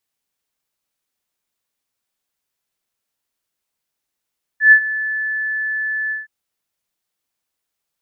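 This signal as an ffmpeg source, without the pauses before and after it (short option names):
-f lavfi -i "aevalsrc='0.708*sin(2*PI*1740*t)':d=1.669:s=44100,afade=t=in:d=0.116,afade=t=out:st=0.116:d=0.08:silence=0.158,afade=t=out:st=1.51:d=0.159"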